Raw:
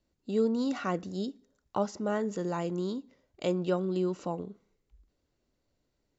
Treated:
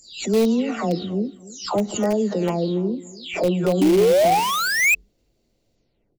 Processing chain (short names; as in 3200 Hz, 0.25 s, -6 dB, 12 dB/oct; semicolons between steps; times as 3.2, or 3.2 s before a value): spectral delay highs early, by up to 0.437 s; on a send: feedback echo 0.287 s, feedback 18%, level -19 dB; on the sum: painted sound rise, 3.81–4.95, 280–2600 Hz -24 dBFS; de-hum 362 Hz, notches 2; in parallel at -11 dB: wrapped overs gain 22 dB; on the sum: band shelf 1300 Hz -8 dB 1.2 oct; backwards sustainer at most 110 dB/s; gain +8.5 dB